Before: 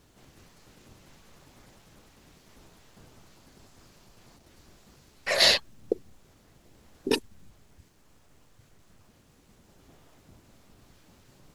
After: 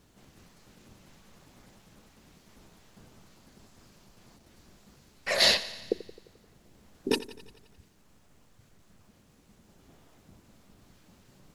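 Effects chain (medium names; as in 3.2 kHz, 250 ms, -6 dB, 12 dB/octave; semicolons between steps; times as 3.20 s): peaking EQ 200 Hz +5 dB 0.42 oct; thinning echo 87 ms, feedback 63%, high-pass 160 Hz, level -16 dB; trim -2 dB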